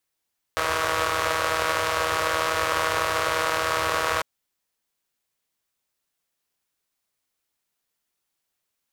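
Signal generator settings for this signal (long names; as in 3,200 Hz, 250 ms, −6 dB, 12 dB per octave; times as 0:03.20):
pulse-train model of a four-cylinder engine, steady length 3.65 s, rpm 4,800, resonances 91/580/1,100 Hz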